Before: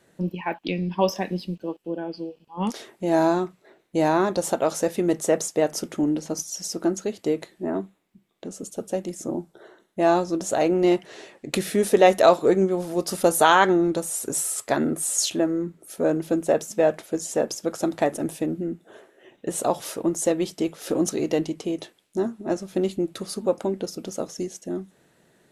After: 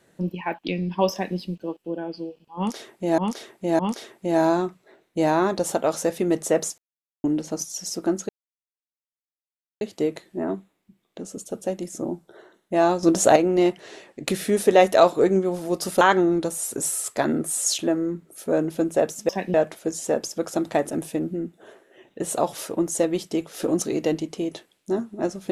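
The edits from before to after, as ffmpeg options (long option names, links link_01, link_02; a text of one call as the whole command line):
ffmpeg -i in.wav -filter_complex "[0:a]asplit=11[link_01][link_02][link_03][link_04][link_05][link_06][link_07][link_08][link_09][link_10][link_11];[link_01]atrim=end=3.182[link_12];[link_02]atrim=start=2.568:end=3.182[link_13];[link_03]atrim=start=2.568:end=5.56,asetpts=PTS-STARTPTS,afade=type=out:start_time=2.988:duration=0.004:curve=hsin[link_14];[link_04]atrim=start=5.56:end=6.02,asetpts=PTS-STARTPTS,volume=0[link_15];[link_05]atrim=start=6.02:end=7.07,asetpts=PTS-STARTPTS,afade=type=in:duration=0.004:curve=hsin,afade=type=out:start_time=1.046:duration=0.004:curve=hsin,apad=pad_dur=1.52[link_16];[link_06]atrim=start=7.07:end=10.292,asetpts=PTS-STARTPTS,afade=type=in:duration=0.004:curve=hsin[link_17];[link_07]atrim=start=10.288:end=10.622,asetpts=PTS-STARTPTS,volume=8dB[link_18];[link_08]atrim=start=10.618:end=13.272[link_19];[link_09]atrim=start=13.528:end=16.812[link_20];[link_10]atrim=start=1.118:end=1.372[link_21];[link_11]atrim=start=16.808[link_22];[link_12][link_13]acrossfade=duration=0.004:curve1=hsin:curve2=hsin[link_23];[link_14][link_15][link_16][link_17]concat=n=4:v=0:a=1[link_24];[link_23][link_24]acrossfade=duration=0.004:curve1=hsin:curve2=hsin[link_25];[link_25][link_18]acrossfade=duration=0.004:curve1=hsin:curve2=hsin[link_26];[link_26][link_19]acrossfade=duration=0.004:curve1=hsin:curve2=hsin[link_27];[link_27][link_20]acrossfade=duration=0.004:curve1=hsin:curve2=hsin[link_28];[link_28][link_21]acrossfade=duration=0.004:curve1=hsin:curve2=hsin[link_29];[link_29][link_22]acrossfade=duration=0.004:curve1=hsin:curve2=hsin" out.wav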